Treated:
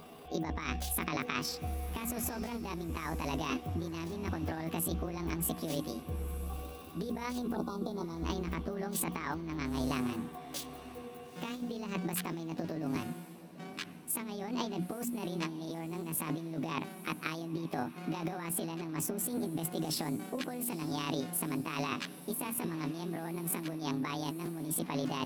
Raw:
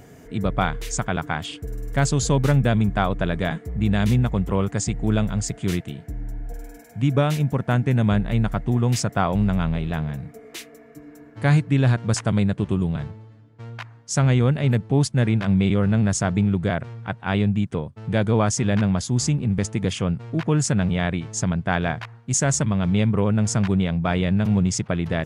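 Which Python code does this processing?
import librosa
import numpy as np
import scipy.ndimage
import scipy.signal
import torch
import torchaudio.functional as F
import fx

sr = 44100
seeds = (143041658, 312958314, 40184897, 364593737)

y = fx.pitch_heads(x, sr, semitones=8.5)
y = fx.low_shelf(y, sr, hz=230.0, db=-4.0)
y = fx.hum_notches(y, sr, base_hz=60, count=5)
y = fx.over_compress(y, sr, threshold_db=-29.0, ratio=-1.0)
y = fx.spec_erase(y, sr, start_s=7.55, length_s=0.7, low_hz=1500.0, high_hz=3400.0)
y = fx.echo_diffused(y, sr, ms=939, feedback_pct=41, wet_db=-15)
y = F.gain(torch.from_numpy(y), -7.5).numpy()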